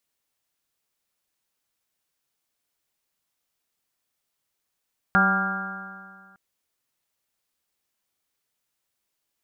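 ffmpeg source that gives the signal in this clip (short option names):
-f lavfi -i "aevalsrc='0.0891*pow(10,-3*t/1.93)*sin(2*PI*190.2*t)+0.0188*pow(10,-3*t/1.93)*sin(2*PI*381.59*t)+0.0211*pow(10,-3*t/1.93)*sin(2*PI*575.36*t)+0.0631*pow(10,-3*t/1.93)*sin(2*PI*772.66*t)+0.0237*pow(10,-3*t/1.93)*sin(2*PI*974.62*t)+0.0531*pow(10,-3*t/1.93)*sin(2*PI*1182.31*t)+0.15*pow(10,-3*t/1.93)*sin(2*PI*1396.75*t)+0.0708*pow(10,-3*t/1.93)*sin(2*PI*1618.92*t)':d=1.21:s=44100"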